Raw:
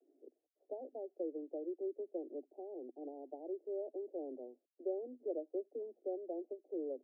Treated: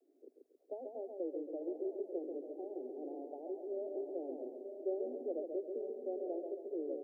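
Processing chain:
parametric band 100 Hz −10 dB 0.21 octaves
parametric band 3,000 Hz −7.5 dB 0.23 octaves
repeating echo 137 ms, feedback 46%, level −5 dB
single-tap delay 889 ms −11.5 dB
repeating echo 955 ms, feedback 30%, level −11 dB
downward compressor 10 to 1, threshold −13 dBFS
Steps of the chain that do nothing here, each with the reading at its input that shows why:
parametric band 100 Hz: nothing at its input below 230 Hz
parametric band 3,000 Hz: nothing at its input above 850 Hz
downward compressor, threshold −13 dBFS: peak of its input −27.0 dBFS

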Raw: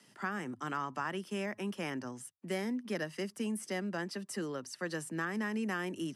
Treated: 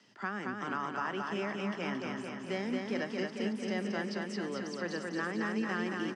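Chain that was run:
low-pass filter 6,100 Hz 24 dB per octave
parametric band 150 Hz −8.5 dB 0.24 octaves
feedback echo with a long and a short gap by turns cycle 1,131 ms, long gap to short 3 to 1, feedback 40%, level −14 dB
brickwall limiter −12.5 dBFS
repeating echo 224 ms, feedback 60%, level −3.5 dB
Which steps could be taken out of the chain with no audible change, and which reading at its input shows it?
brickwall limiter −12.5 dBFS: peak of its input −21.5 dBFS

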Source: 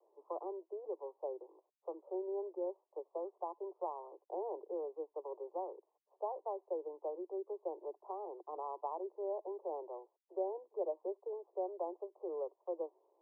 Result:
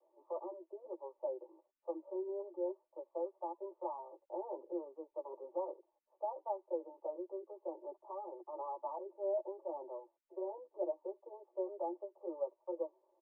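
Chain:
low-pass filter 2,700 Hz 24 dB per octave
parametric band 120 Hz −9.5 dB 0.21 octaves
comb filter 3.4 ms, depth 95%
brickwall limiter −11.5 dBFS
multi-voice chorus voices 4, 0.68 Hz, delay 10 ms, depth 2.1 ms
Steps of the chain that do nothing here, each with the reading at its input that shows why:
low-pass filter 2,700 Hz: nothing at its input above 1,200 Hz
parametric band 120 Hz: nothing at its input below 290 Hz
brickwall limiter −11.5 dBFS: peak of its input −22.0 dBFS

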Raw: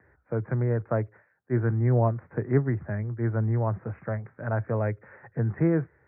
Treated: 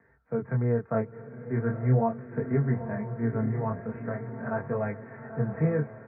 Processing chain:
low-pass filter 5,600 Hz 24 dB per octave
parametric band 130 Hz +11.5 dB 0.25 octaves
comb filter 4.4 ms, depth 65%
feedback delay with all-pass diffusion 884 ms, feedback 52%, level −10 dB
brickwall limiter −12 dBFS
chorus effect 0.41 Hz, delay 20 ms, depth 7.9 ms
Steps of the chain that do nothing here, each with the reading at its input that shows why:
low-pass filter 5,600 Hz: nothing at its input above 1,100 Hz

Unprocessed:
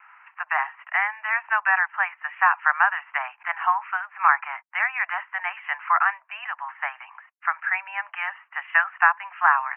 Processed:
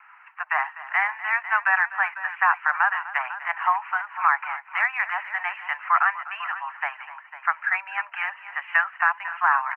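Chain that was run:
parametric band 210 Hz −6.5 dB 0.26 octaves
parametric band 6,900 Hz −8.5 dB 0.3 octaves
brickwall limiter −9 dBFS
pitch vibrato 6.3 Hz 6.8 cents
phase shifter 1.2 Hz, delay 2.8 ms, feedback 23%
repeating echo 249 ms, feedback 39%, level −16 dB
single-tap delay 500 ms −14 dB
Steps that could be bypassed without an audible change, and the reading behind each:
parametric band 210 Hz: nothing at its input below 570 Hz
parametric band 6,900 Hz: nothing at its input above 3,000 Hz

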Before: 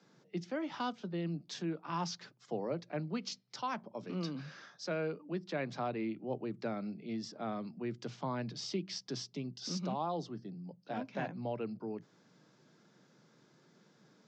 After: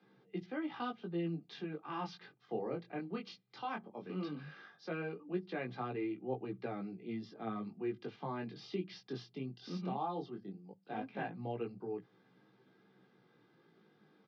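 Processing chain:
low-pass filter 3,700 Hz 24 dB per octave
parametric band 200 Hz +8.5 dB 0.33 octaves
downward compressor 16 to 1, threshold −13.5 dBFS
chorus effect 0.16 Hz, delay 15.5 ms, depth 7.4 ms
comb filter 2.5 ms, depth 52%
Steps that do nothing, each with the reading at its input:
downward compressor, threshold −13.5 dBFS: peak of its input −20.5 dBFS

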